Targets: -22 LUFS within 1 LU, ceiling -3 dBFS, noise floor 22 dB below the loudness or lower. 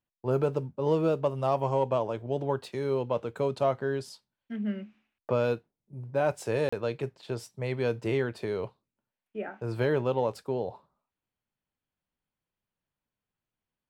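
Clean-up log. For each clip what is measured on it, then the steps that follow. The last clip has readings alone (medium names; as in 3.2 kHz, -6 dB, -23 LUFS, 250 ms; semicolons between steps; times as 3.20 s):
dropouts 1; longest dropout 35 ms; loudness -30.5 LUFS; peak level -15.5 dBFS; loudness target -22.0 LUFS
-> interpolate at 6.69 s, 35 ms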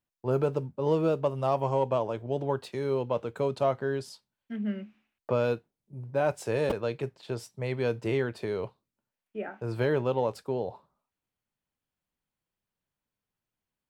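dropouts 0; loudness -30.5 LUFS; peak level -15.5 dBFS; loudness target -22.0 LUFS
-> trim +8.5 dB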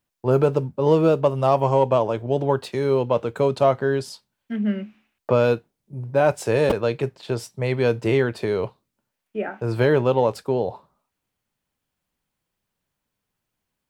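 loudness -22.0 LUFS; peak level -7.0 dBFS; noise floor -81 dBFS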